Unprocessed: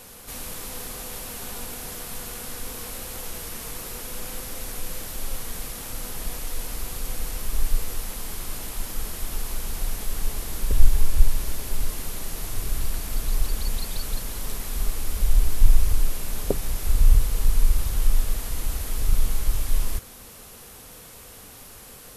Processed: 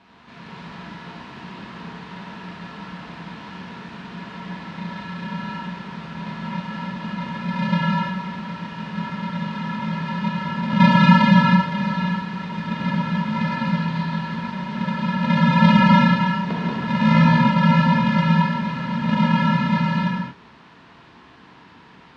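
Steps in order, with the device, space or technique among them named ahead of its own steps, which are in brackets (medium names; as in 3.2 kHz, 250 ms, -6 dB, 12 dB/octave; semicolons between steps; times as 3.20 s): ring modulator pedal into a guitar cabinet (polarity switched at an audio rate 190 Hz; cabinet simulation 75–3700 Hz, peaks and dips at 580 Hz -8 dB, 1 kHz +7 dB, 1.7 kHz +4 dB); gated-style reverb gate 360 ms flat, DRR -6.5 dB; trim -8 dB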